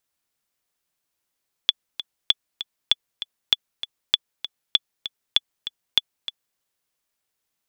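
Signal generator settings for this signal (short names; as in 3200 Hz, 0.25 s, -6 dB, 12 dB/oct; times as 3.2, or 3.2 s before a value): metronome 196 bpm, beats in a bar 2, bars 8, 3440 Hz, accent 13 dB -2.5 dBFS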